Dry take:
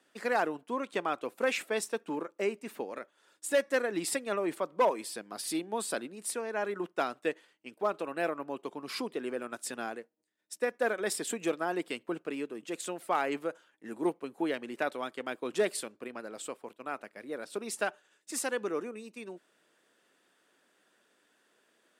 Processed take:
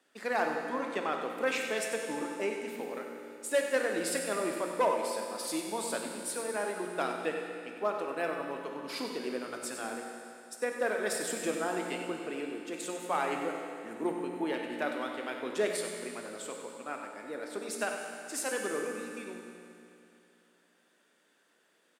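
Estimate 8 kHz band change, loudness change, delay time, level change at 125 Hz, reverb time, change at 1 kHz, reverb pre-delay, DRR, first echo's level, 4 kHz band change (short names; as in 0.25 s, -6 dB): +0.5 dB, 0.0 dB, 96 ms, +0.5 dB, 2.7 s, 0.0 dB, 17 ms, 1.0 dB, -10.0 dB, +0.5 dB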